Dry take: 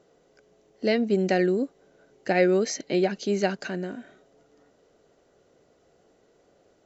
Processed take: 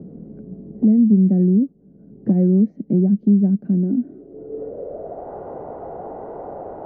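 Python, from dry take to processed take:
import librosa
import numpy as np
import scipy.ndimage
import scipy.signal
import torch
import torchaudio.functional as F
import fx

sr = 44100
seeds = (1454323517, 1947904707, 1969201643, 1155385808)

y = fx.filter_sweep_lowpass(x, sr, from_hz=210.0, to_hz=850.0, start_s=3.71, end_s=5.35, q=4.2)
y = fx.band_squash(y, sr, depth_pct=70)
y = y * librosa.db_to_amplitude(5.5)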